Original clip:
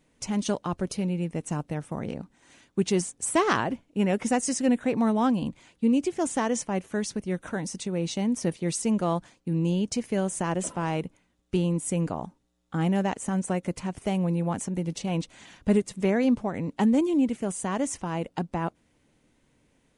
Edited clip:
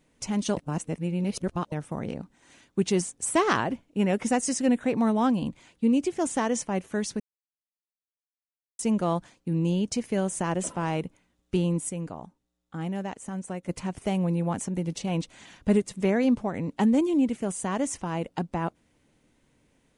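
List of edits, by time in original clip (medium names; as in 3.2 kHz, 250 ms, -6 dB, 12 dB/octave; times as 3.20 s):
0.57–1.72 s: reverse
7.20–8.79 s: mute
11.89–13.69 s: gain -7 dB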